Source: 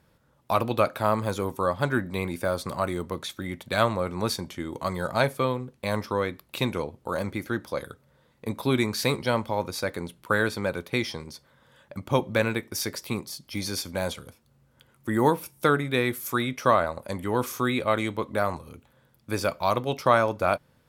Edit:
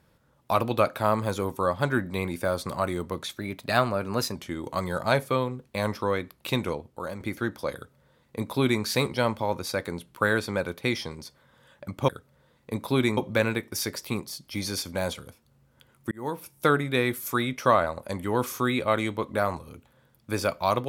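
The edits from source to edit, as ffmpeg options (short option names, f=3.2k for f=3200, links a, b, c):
-filter_complex "[0:a]asplit=7[a][b][c][d][e][f][g];[a]atrim=end=3.384[h];[b]atrim=start=3.38:end=4.44,asetpts=PTS-STARTPTS,asetrate=48069,aresample=44100,atrim=end_sample=42886,asetpts=PTS-STARTPTS[i];[c]atrim=start=4.436:end=7.29,asetpts=PTS-STARTPTS,afade=t=out:st=2.334:d=0.52:silence=0.375837[j];[d]atrim=start=7.29:end=12.172,asetpts=PTS-STARTPTS,afade=t=in:d=0.004:c=hsin:silence=0.375837[k];[e]atrim=start=7.828:end=8.922[l];[f]atrim=start=12.168:end=15.11,asetpts=PTS-STARTPTS,afade=t=out:st=2.938:d=0.004:c=hsin[m];[g]atrim=start=15.11,asetpts=PTS-STARTPTS,afade=t=in:d=0.56[n];[h][i]acrossfade=d=0.004:c1=hsin:c2=hsin[o];[j][k]concat=n=2:v=0:a=1[p];[o][p]acrossfade=d=0.004:c1=hsin:c2=hsin[q];[q][l]acrossfade=d=0.004:c1=hsin:c2=hsin[r];[m][n]concat=n=2:v=0:a=1[s];[r][s]acrossfade=d=0.004:c1=hsin:c2=hsin"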